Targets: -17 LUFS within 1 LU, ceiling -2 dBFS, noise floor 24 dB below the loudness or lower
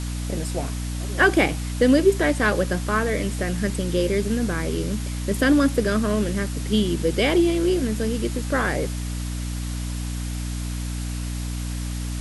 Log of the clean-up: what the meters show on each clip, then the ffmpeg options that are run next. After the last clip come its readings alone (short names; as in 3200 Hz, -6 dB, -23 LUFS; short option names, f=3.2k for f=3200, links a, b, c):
hum 60 Hz; harmonics up to 300 Hz; hum level -26 dBFS; noise floor -28 dBFS; noise floor target -48 dBFS; loudness -23.5 LUFS; peak -6.0 dBFS; loudness target -17.0 LUFS
-> -af "bandreject=f=60:t=h:w=6,bandreject=f=120:t=h:w=6,bandreject=f=180:t=h:w=6,bandreject=f=240:t=h:w=6,bandreject=f=300:t=h:w=6"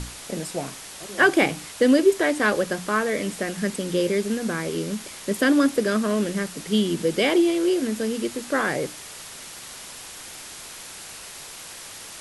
hum none; noise floor -40 dBFS; noise floor target -47 dBFS
-> -af "afftdn=nr=7:nf=-40"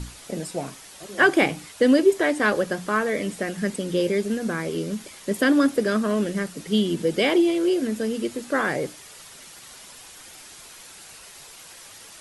noise floor -45 dBFS; noise floor target -47 dBFS
-> -af "afftdn=nr=6:nf=-45"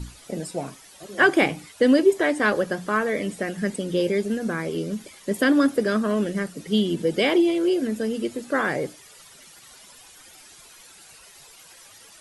noise floor -49 dBFS; loudness -23.0 LUFS; peak -6.0 dBFS; loudness target -17.0 LUFS
-> -af "volume=6dB,alimiter=limit=-2dB:level=0:latency=1"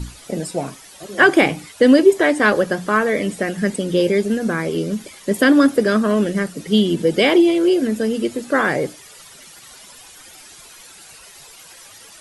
loudness -17.5 LUFS; peak -2.0 dBFS; noise floor -43 dBFS